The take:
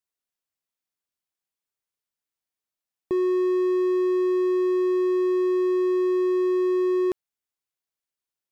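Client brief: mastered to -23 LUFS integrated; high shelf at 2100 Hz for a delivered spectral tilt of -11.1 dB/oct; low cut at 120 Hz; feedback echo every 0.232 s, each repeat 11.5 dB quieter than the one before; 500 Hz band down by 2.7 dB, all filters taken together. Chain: HPF 120 Hz; bell 500 Hz -4.5 dB; high shelf 2100 Hz -5 dB; feedback echo 0.232 s, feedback 27%, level -11.5 dB; gain +1 dB

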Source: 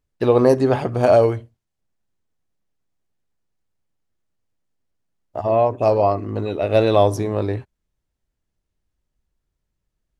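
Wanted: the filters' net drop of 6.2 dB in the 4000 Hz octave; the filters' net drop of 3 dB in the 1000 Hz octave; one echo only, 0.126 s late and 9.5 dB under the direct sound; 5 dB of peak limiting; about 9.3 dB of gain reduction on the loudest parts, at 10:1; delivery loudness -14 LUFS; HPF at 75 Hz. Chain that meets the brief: HPF 75 Hz; bell 1000 Hz -4.5 dB; bell 4000 Hz -7 dB; compressor 10:1, threshold -20 dBFS; limiter -16 dBFS; echo 0.126 s -9.5 dB; gain +13 dB

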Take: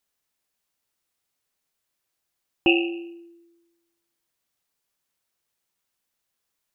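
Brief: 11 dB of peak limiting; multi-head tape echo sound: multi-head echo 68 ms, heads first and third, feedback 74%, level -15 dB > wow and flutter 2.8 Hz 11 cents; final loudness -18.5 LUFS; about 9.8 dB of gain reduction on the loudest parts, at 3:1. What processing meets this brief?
compressor 3:1, threshold -28 dBFS; limiter -24 dBFS; multi-head echo 68 ms, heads first and third, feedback 74%, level -15 dB; wow and flutter 2.8 Hz 11 cents; gain +19 dB

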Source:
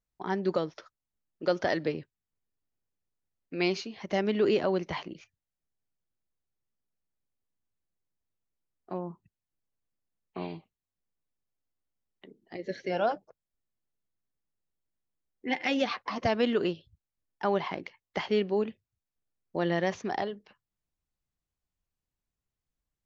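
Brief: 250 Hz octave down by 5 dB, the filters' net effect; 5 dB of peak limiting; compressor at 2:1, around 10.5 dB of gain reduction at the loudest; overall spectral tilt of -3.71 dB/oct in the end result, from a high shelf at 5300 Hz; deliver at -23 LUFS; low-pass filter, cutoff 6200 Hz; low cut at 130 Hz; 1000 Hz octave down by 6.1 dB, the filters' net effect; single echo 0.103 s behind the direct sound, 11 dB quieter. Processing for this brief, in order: HPF 130 Hz; LPF 6200 Hz; bell 250 Hz -6 dB; bell 1000 Hz -8.5 dB; high shelf 5300 Hz -5 dB; compressor 2:1, threshold -45 dBFS; limiter -31.5 dBFS; echo 0.103 s -11 dB; gain +22 dB

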